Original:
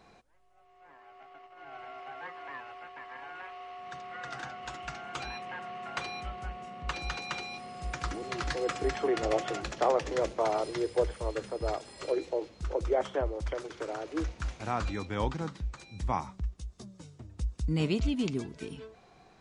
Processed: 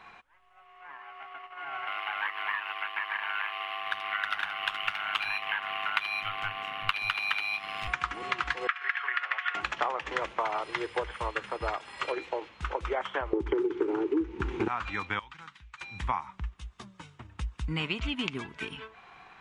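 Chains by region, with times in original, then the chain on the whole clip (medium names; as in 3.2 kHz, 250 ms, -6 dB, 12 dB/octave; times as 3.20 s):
1.87–7.88 s: ring modulator 51 Hz + peaking EQ 3.6 kHz +12 dB 2.3 oct + decimation joined by straight lines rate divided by 3×
8.67–9.55 s: resonant high-pass 1.6 kHz, resonance Q 2.4 + distance through air 200 m
13.33–14.68 s: resonant low shelf 500 Hz +11.5 dB, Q 3 + compression 2:1, threshold -24 dBFS + small resonant body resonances 390/830 Hz, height 16 dB, ringing for 25 ms
15.19–15.81 s: amplifier tone stack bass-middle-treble 5-5-5 + compression 2:1, threshold -48 dBFS
whole clip: high-order bell 1.7 kHz +15 dB 2.3 oct; compression 4:1, threshold -26 dBFS; transient shaper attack +2 dB, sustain -3 dB; trim -2.5 dB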